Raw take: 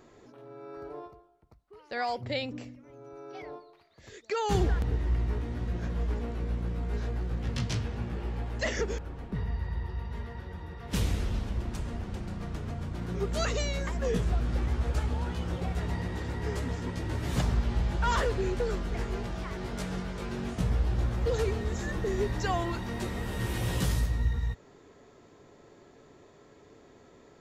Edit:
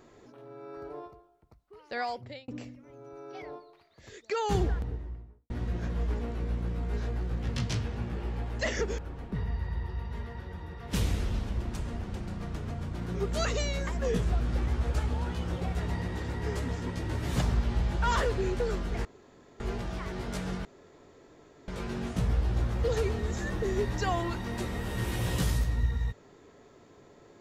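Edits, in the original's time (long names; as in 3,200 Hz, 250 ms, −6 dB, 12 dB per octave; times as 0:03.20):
0:01.95–0:02.48: fade out
0:04.32–0:05.50: fade out and dull
0:19.05: splice in room tone 0.55 s
0:20.10: splice in room tone 1.03 s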